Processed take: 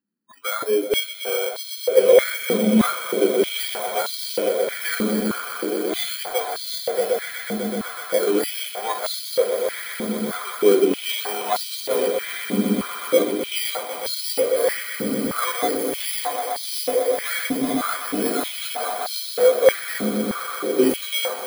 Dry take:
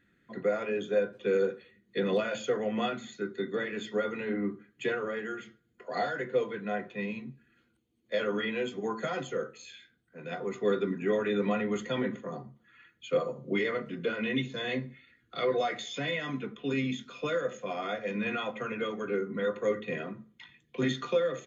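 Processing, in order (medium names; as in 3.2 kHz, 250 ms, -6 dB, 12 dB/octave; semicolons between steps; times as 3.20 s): bit-reversed sample order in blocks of 16 samples; spectral noise reduction 27 dB; echo with a slow build-up 125 ms, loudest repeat 8, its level -11.5 dB; step-sequenced high-pass 3.2 Hz 220–4200 Hz; trim +6 dB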